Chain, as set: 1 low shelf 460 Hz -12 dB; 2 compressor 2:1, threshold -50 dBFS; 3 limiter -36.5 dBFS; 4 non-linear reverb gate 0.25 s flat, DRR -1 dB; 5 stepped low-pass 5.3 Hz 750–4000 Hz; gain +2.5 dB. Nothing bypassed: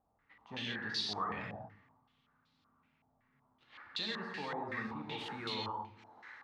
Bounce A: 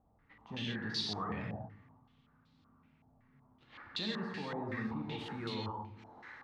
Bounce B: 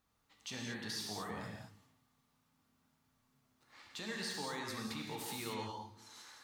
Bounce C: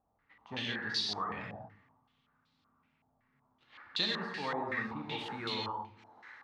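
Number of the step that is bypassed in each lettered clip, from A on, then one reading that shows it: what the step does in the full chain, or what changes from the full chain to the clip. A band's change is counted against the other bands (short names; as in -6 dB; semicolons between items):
1, 125 Hz band +7.5 dB; 5, 8 kHz band +13.5 dB; 3, crest factor change +2.0 dB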